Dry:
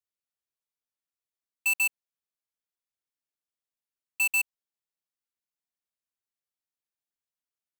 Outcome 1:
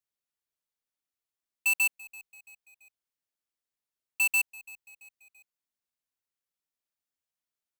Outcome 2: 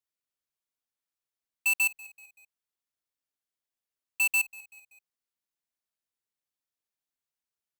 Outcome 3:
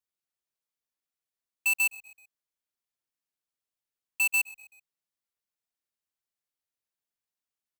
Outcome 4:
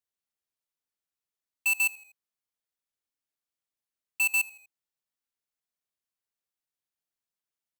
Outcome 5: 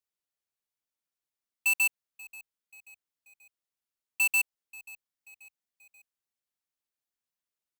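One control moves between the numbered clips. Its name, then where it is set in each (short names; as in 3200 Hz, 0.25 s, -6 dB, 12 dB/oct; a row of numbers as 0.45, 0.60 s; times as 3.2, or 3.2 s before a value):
frequency-shifting echo, time: 336, 191, 127, 81, 534 ms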